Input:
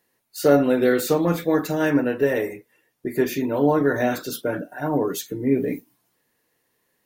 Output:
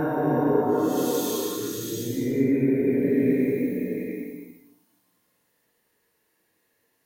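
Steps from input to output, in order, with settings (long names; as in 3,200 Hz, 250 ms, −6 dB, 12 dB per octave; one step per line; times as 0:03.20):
reverb whose tail is shaped and stops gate 190 ms rising, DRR 3 dB
extreme stretch with random phases 4.1×, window 0.25 s, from 0:04.88
level −2 dB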